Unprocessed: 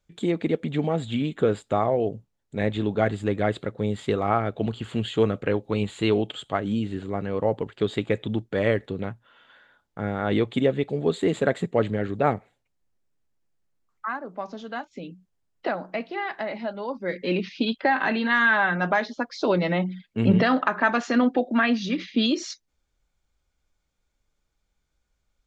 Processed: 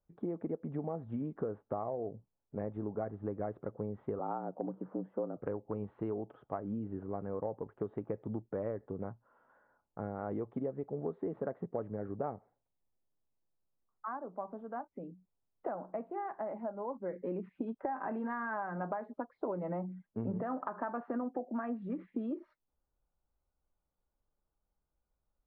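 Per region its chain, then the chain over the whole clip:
0:04.19–0:05.37: low-pass filter 1,200 Hz + frequency shifter +75 Hz
whole clip: low-pass filter 1,100 Hz 24 dB per octave; low-shelf EQ 470 Hz −6 dB; downward compressor, threshold −30 dBFS; level −3.5 dB

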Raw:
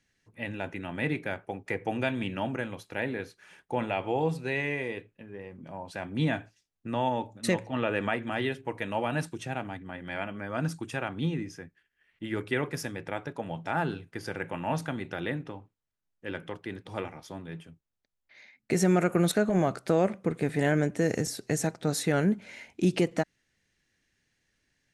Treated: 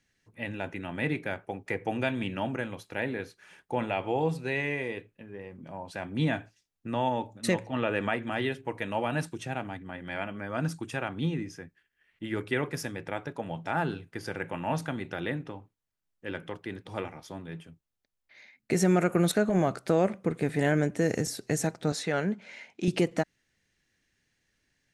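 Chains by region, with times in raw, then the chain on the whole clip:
0:21.92–0:22.88: band-pass filter 190–6,300 Hz + parametric band 300 Hz −6 dB 0.87 octaves
whole clip: no processing

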